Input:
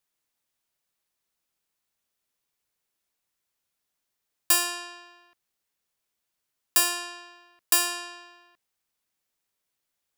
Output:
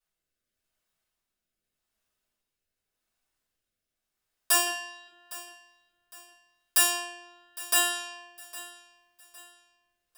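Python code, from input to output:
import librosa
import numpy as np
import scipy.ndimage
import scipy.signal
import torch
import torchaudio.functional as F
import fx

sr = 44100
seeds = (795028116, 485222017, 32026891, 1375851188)

p1 = fx.comb(x, sr, ms=6.8, depth=0.7, at=(4.65, 5.07))
p2 = fx.rotary(p1, sr, hz=0.85)
p3 = p2 + fx.echo_feedback(p2, sr, ms=809, feedback_pct=38, wet_db=-18, dry=0)
p4 = fx.room_shoebox(p3, sr, seeds[0], volume_m3=150.0, walls='furnished', distance_m=5.2)
y = F.gain(torch.from_numpy(p4), -8.5).numpy()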